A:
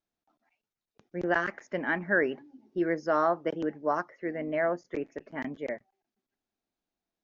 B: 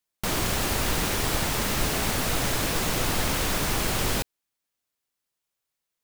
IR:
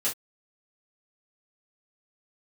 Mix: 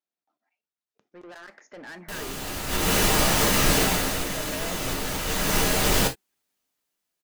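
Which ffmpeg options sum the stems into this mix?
-filter_complex "[0:a]highpass=frequency=340:poles=1,acompressor=threshold=-33dB:ratio=2,asoftclip=type=tanh:threshold=-38.5dB,volume=-6dB,asplit=3[link_01][link_02][link_03];[link_02]volume=-19dB[link_04];[1:a]adelay=1850,volume=2.5dB,afade=type=in:start_time=2.67:duration=0.26:silence=0.223872,afade=type=out:start_time=3.74:duration=0.44:silence=0.334965,afade=type=in:start_time=5.25:duration=0.29:silence=0.421697,asplit=2[link_05][link_06];[link_06]volume=-6dB[link_07];[link_03]apad=whole_len=347602[link_08];[link_05][link_08]sidechaincompress=threshold=-54dB:ratio=8:attack=16:release=375[link_09];[2:a]atrim=start_sample=2205[link_10];[link_04][link_07]amix=inputs=2:normalize=0[link_11];[link_11][link_10]afir=irnorm=-1:irlink=0[link_12];[link_01][link_09][link_12]amix=inputs=3:normalize=0,dynaudnorm=framelen=720:gausssize=5:maxgain=8.5dB"

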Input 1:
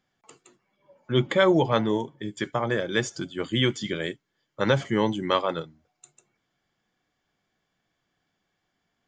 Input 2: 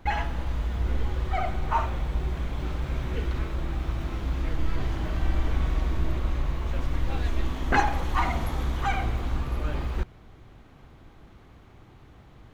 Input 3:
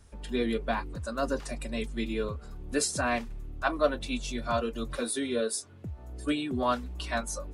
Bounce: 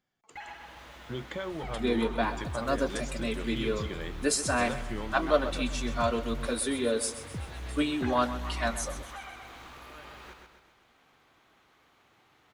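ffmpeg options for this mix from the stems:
ffmpeg -i stem1.wav -i stem2.wav -i stem3.wav -filter_complex "[0:a]acompressor=threshold=-27dB:ratio=6,volume=-7dB[link_01];[1:a]highpass=frequency=1300:poles=1,acompressor=threshold=-44dB:ratio=2,adelay=300,volume=-3dB,asplit=2[link_02][link_03];[link_03]volume=-5dB[link_04];[2:a]adelay=1500,volume=1dB,asplit=2[link_05][link_06];[link_06]volume=-13dB[link_07];[link_04][link_07]amix=inputs=2:normalize=0,aecho=0:1:130|260|390|520|650|780|910:1|0.49|0.24|0.118|0.0576|0.0282|0.0138[link_08];[link_01][link_02][link_05][link_08]amix=inputs=4:normalize=0" out.wav

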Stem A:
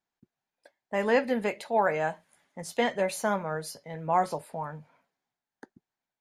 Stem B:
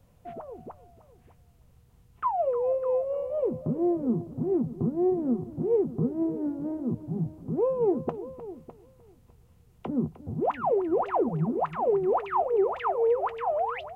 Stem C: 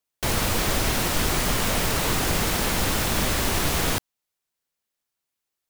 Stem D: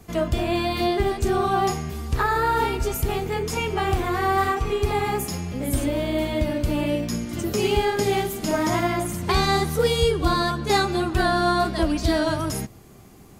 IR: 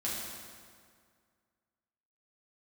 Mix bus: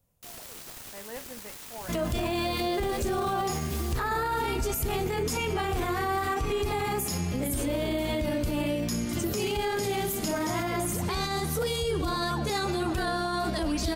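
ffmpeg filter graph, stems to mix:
-filter_complex "[0:a]volume=-18dB[link_01];[1:a]highshelf=frequency=6300:gain=9.5,volume=-13.5dB[link_02];[2:a]aeval=exprs='0.316*(cos(1*acos(clip(val(0)/0.316,-1,1)))-cos(1*PI/2))+0.1*(cos(7*acos(clip(val(0)/0.316,-1,1)))-cos(7*PI/2))':channel_layout=same,asoftclip=type=tanh:threshold=-18.5dB,volume=-19.5dB[link_03];[3:a]adelay=1800,volume=0.5dB[link_04];[link_01][link_02][link_03][link_04]amix=inputs=4:normalize=0,highshelf=frequency=5000:gain=5.5,alimiter=limit=-21dB:level=0:latency=1:release=30"

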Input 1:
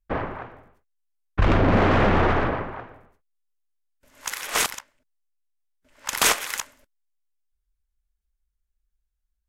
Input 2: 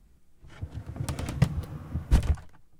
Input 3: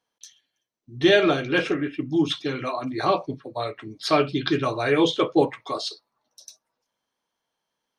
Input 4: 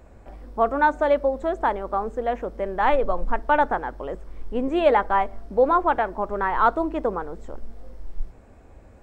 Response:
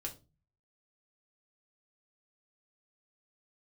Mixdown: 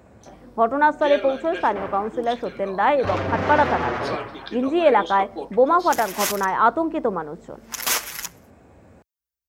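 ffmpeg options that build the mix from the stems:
-filter_complex "[0:a]aexciter=amount=1.4:drive=6.3:freq=5000,asplit=2[link_01][link_02];[link_02]adelay=6.9,afreqshift=-0.72[link_03];[link_01][link_03]amix=inputs=2:normalize=1,adelay=1650,volume=-1dB[link_04];[1:a]acompressor=threshold=-34dB:ratio=6,adelay=1150,volume=-13.5dB[link_05];[2:a]highpass=330,volume=-10dB[link_06];[3:a]equalizer=frequency=160:width=0.9:gain=8,volume=2dB[link_07];[link_04][link_05][link_06][link_07]amix=inputs=4:normalize=0,highpass=frequency=69:width=0.5412,highpass=frequency=69:width=1.3066,lowshelf=frequency=270:gain=-6"

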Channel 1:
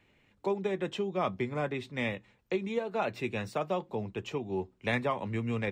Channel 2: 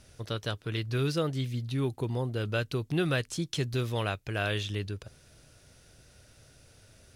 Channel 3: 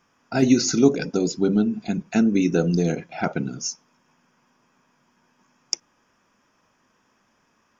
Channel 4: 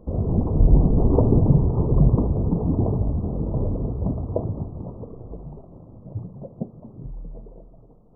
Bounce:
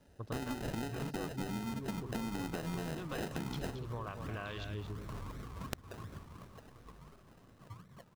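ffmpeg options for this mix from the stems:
ffmpeg -i stem1.wav -i stem2.wav -i stem3.wav -i stem4.wav -filter_complex "[1:a]bandreject=frequency=1400:width=23,afwtdn=0.0126,volume=-4.5dB,asplit=2[link_01][link_02];[link_02]volume=-12dB[link_03];[2:a]acompressor=threshold=-20dB:ratio=6,acrusher=samples=25:mix=1:aa=0.000001:lfo=1:lforange=15:lforate=0.29,volume=-0.5dB[link_04];[3:a]acrusher=samples=32:mix=1:aa=0.000001:lfo=1:lforange=19.2:lforate=2.8,asoftclip=type=tanh:threshold=-17dB,adelay=1550,volume=-19dB,asplit=2[link_05][link_06];[link_06]volume=-15dB[link_07];[link_04]acrusher=samples=39:mix=1:aa=0.000001,acompressor=threshold=-28dB:ratio=6,volume=0dB[link_08];[link_01][link_05]amix=inputs=2:normalize=0,equalizer=frequency=1100:width_type=o:width=0.33:gain=13,acompressor=threshold=-35dB:ratio=6,volume=0dB[link_09];[link_03][link_07]amix=inputs=2:normalize=0,aecho=0:1:224:1[link_10];[link_08][link_09][link_10]amix=inputs=3:normalize=0,acompressor=threshold=-38dB:ratio=3" out.wav

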